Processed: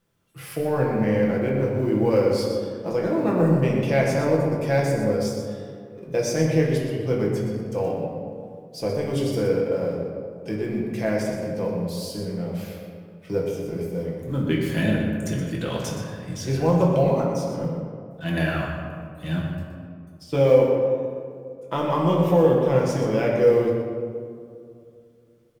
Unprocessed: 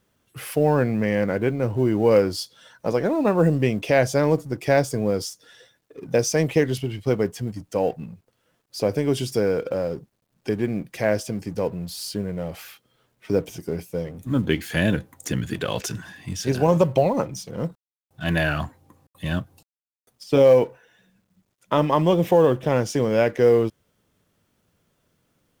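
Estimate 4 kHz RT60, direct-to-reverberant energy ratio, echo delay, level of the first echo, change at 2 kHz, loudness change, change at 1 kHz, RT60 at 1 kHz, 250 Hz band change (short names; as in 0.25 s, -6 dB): 1.0 s, -3.0 dB, 0.122 s, -8.5 dB, -3.0 dB, -1.0 dB, -2.0 dB, 2.1 s, +0.5 dB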